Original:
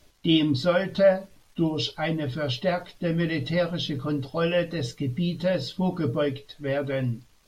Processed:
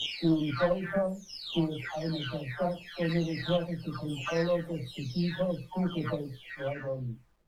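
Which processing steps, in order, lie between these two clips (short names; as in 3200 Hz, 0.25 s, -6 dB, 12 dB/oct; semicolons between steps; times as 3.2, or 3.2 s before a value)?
spectral delay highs early, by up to 0.753 s; bit-crush 12-bit; added harmonics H 2 -12 dB, 6 -34 dB, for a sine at -10.5 dBFS; gain -4 dB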